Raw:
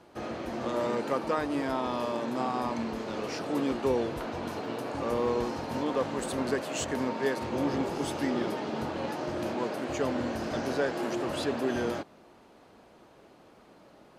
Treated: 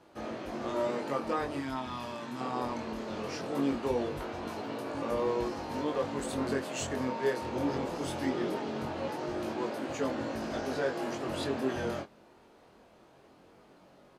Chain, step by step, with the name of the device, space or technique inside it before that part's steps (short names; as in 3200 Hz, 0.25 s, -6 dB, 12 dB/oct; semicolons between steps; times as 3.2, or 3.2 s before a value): 1.58–2.41 bell 490 Hz -12 dB 1.2 oct; double-tracked vocal (doubler 22 ms -11.5 dB; chorus 0.2 Hz, delay 18.5 ms, depth 5.7 ms)